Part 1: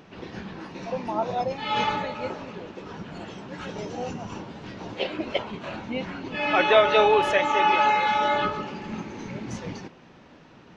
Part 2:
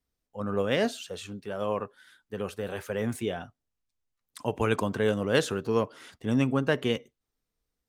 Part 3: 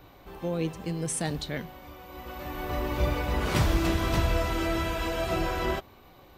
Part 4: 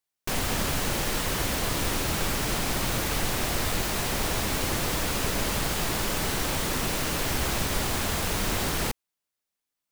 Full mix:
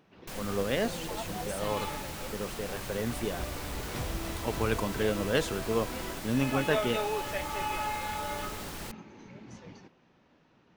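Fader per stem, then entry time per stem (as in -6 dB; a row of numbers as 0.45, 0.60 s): -13.5, -3.5, -12.5, -13.0 dB; 0.00, 0.00, 0.40, 0.00 s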